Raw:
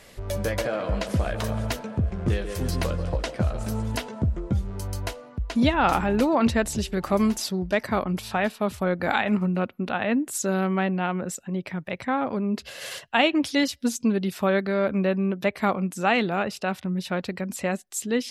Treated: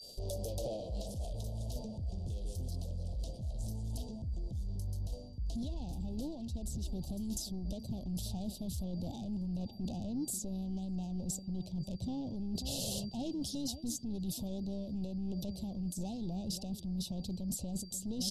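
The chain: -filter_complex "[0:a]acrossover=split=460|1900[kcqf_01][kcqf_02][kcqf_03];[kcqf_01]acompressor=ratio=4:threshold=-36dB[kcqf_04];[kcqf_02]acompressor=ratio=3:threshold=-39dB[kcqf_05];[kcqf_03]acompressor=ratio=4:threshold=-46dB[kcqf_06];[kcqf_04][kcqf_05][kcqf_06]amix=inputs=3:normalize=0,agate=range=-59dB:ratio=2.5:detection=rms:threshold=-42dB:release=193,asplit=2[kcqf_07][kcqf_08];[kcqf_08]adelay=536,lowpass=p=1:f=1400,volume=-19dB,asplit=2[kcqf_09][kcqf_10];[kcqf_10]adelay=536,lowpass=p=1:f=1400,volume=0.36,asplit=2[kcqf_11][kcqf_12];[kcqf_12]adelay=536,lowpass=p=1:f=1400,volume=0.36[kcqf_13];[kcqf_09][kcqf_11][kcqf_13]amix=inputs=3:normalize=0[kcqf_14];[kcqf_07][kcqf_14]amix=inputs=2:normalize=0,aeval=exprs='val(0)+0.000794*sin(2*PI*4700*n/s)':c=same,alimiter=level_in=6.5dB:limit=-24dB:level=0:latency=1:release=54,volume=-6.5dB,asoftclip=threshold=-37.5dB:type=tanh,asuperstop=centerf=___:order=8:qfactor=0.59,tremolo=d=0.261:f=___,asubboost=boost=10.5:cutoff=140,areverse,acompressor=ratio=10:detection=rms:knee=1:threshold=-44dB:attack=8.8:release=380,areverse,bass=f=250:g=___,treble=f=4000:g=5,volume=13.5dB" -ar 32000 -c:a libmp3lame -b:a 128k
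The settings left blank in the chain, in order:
1600, 130, -4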